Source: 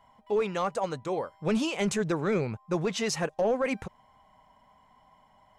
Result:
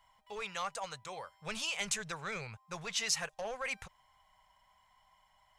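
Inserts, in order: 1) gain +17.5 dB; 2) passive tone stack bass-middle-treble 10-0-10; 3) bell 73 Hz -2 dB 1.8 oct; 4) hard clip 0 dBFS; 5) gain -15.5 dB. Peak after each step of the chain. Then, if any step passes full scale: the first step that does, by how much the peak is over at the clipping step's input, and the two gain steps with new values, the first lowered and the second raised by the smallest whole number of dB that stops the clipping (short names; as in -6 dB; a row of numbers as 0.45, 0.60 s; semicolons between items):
-2.0, -3.0, -3.0, -3.0, -18.5 dBFS; no overload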